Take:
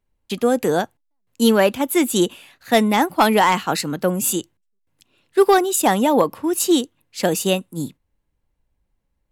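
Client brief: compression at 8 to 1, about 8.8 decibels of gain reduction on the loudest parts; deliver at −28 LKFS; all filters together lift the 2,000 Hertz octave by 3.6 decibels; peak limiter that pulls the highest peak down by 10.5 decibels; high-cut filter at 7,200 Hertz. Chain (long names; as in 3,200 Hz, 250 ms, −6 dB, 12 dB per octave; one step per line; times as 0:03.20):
low-pass filter 7,200 Hz
parametric band 2,000 Hz +4.5 dB
downward compressor 8 to 1, threshold −18 dBFS
brickwall limiter −17.5 dBFS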